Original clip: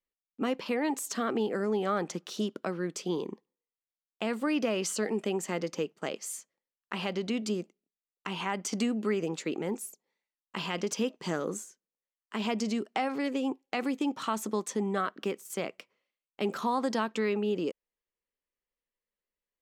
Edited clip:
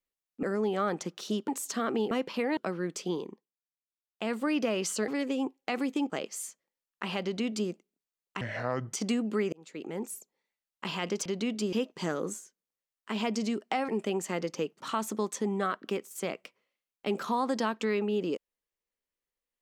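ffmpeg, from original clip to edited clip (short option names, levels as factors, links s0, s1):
-filter_complex "[0:a]asplit=16[s0][s1][s2][s3][s4][s5][s6][s7][s8][s9][s10][s11][s12][s13][s14][s15];[s0]atrim=end=0.432[s16];[s1]atrim=start=1.518:end=2.572[s17];[s2]atrim=start=0.888:end=1.522[s18];[s3]atrim=start=0.428:end=0.892[s19];[s4]atrim=start=2.568:end=3.52,asetpts=PTS-STARTPTS,afade=t=out:st=0.512:d=0.44:silence=0.0794328[s20];[s5]atrim=start=3.52:end=3.87,asetpts=PTS-STARTPTS,volume=0.0794[s21];[s6]atrim=start=3.87:end=5.082,asetpts=PTS-STARTPTS,afade=t=in:d=0.44:silence=0.0794328[s22];[s7]atrim=start=13.128:end=14.152[s23];[s8]atrim=start=5.998:end=8.314[s24];[s9]atrim=start=8.31:end=8.64,asetpts=PTS-STARTPTS,asetrate=28224,aresample=44100,atrim=end_sample=22739,asetpts=PTS-STARTPTS[s25];[s10]atrim=start=8.636:end=9.24,asetpts=PTS-STARTPTS,afade=t=out:st=0.6:d=0.004:c=hsin[s26];[s11]atrim=start=9.24:end=10.972,asetpts=PTS-STARTPTS,afade=t=in:d=0.63[s27];[s12]atrim=start=7.128:end=7.602[s28];[s13]atrim=start=10.968:end=13.132[s29];[s14]atrim=start=5.078:end=6.002[s30];[s15]atrim=start=14.148[s31];[s16][s17]acrossfade=d=0.004:c1=hsin:c2=hsin[s32];[s32][s18]acrossfade=d=0.004:c1=hsin:c2=hsin[s33];[s33][s19]acrossfade=d=0.004:c1=hsin:c2=hsin[s34];[s20][s21][s22]concat=n=3:v=0:a=1[s35];[s34][s35]acrossfade=d=0.004:c1=hsin:c2=hsin[s36];[s36][s23]acrossfade=d=0.004:c1=hsin:c2=hsin[s37];[s37][s24]acrossfade=d=0.004:c1=hsin:c2=hsin[s38];[s38][s25]acrossfade=d=0.004:c1=hsin:c2=hsin[s39];[s26][s27]concat=n=2:v=0:a=1[s40];[s39][s40]acrossfade=d=0.004:c1=hsin:c2=hsin[s41];[s41][s28]acrossfade=d=0.004:c1=hsin:c2=hsin[s42];[s42][s29]acrossfade=d=0.004:c1=hsin:c2=hsin[s43];[s43][s30]acrossfade=d=0.004:c1=hsin:c2=hsin[s44];[s44][s31]acrossfade=d=0.004:c1=hsin:c2=hsin"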